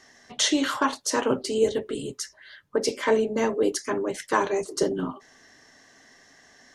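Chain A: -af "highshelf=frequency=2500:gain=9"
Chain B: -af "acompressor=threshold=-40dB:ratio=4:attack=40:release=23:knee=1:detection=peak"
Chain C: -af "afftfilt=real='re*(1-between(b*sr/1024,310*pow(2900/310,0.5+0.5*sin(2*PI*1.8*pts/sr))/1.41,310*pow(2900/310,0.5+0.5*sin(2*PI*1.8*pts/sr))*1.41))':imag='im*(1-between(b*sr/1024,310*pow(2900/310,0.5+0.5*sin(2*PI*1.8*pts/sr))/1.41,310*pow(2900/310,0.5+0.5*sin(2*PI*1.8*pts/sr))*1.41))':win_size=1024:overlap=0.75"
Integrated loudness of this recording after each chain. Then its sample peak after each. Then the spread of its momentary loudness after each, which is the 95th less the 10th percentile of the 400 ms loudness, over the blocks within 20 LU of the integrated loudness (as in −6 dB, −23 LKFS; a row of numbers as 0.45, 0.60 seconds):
−23.0, −35.0, −27.5 LKFS; −3.0, −17.0, −9.5 dBFS; 12, 20, 11 LU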